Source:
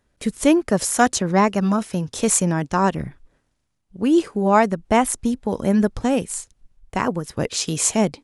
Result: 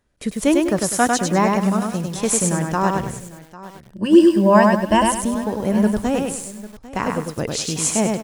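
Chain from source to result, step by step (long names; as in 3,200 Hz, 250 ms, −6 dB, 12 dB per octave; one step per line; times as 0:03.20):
0:03.06–0:05.08: EQ curve with evenly spaced ripples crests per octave 1.3, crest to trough 16 dB
single-tap delay 798 ms −18 dB
feedback echo at a low word length 100 ms, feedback 35%, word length 7 bits, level −3 dB
level −1.5 dB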